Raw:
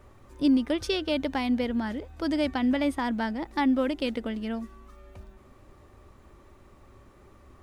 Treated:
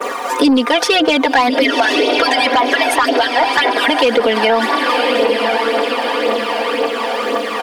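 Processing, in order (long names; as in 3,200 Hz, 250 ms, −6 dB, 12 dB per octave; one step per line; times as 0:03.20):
0:01.49–0:03.88: harmonic-percussive split with one part muted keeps percussive
high-pass filter 430 Hz 24 dB per octave
downward expander −56 dBFS
comb filter 4.2 ms, depth 85%
feedback delay with all-pass diffusion 1,080 ms, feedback 52%, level −12 dB
phase shifter 1.9 Hz, delay 1.4 ms, feedback 50%
high-shelf EQ 3,000 Hz −9.5 dB
soft clipping −25.5 dBFS, distortion −14 dB
boost into a limiter +34 dB
multiband upward and downward compressor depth 70%
level −4 dB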